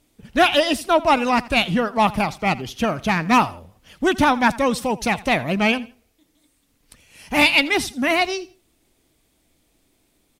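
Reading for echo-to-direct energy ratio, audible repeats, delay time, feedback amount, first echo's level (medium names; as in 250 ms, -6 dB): -19.5 dB, 2, 83 ms, 27%, -20.0 dB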